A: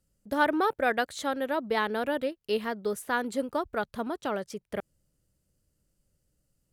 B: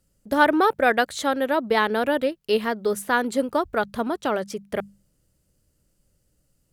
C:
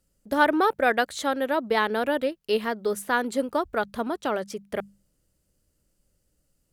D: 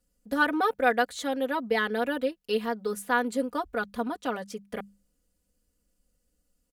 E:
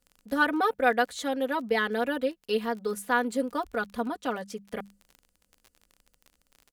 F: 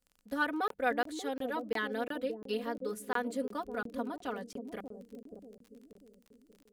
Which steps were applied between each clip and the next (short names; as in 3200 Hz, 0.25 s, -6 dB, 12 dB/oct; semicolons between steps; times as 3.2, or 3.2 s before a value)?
notches 50/100/150/200 Hz; gain +7 dB
bell 120 Hz -4.5 dB 1 oct; gain -2.5 dB
comb 4.1 ms, depth 91%; gain -6 dB
crackle 30/s -39 dBFS
analogue delay 0.586 s, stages 2048, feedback 48%, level -5.5 dB; crackling interface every 0.35 s, samples 1024, zero, from 0.68; gain -7.5 dB